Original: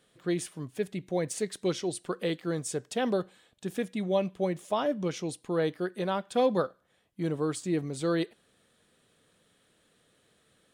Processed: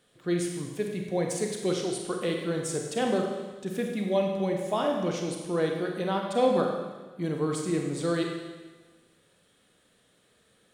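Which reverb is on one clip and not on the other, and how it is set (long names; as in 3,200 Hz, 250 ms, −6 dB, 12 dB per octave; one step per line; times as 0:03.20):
four-comb reverb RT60 1.3 s, combs from 31 ms, DRR 1.5 dB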